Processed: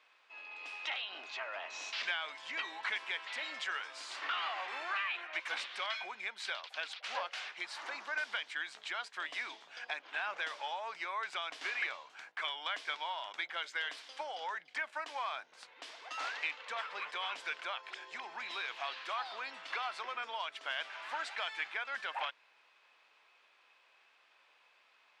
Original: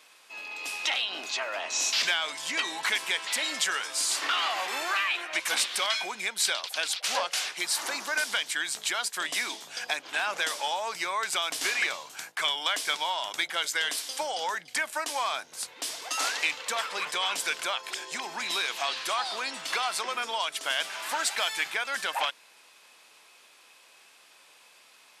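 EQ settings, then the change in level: high-pass 760 Hz 6 dB/octave; low-pass 2.6 kHz 12 dB/octave; -6.0 dB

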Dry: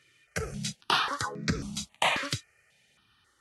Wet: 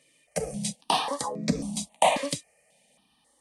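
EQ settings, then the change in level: peaking EQ 500 Hz +13 dB 3 oct; peaking EQ 9.1 kHz +14.5 dB 0.43 oct; static phaser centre 380 Hz, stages 6; -1.5 dB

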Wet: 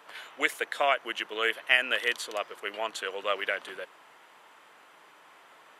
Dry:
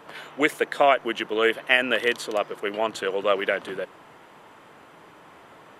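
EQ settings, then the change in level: high-pass 1.3 kHz 6 dB/octave; -1.5 dB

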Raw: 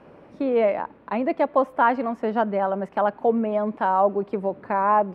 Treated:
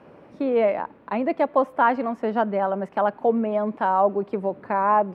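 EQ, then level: high-pass 66 Hz; 0.0 dB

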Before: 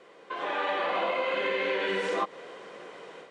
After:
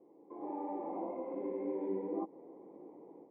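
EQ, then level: cascade formant filter u; band-stop 1.5 kHz, Q 5.2; +5.0 dB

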